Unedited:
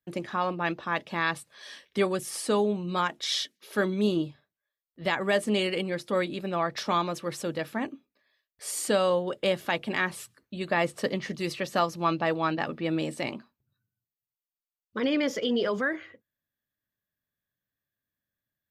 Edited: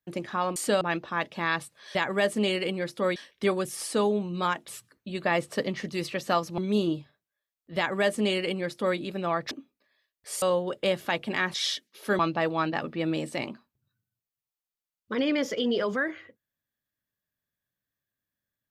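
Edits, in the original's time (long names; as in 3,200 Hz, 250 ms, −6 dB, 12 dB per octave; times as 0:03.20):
0:03.22–0:03.87: swap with 0:10.14–0:12.04
0:05.06–0:06.27: duplicate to 0:01.70
0:06.80–0:07.86: remove
0:08.77–0:09.02: move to 0:00.56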